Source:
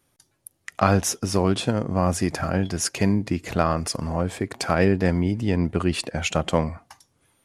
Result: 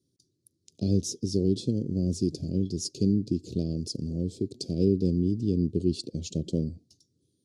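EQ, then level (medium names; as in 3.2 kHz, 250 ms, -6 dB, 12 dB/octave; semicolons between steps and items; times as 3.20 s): high-pass 97 Hz; elliptic band-stop 390–4300 Hz, stop band 50 dB; distance through air 86 m; -1.5 dB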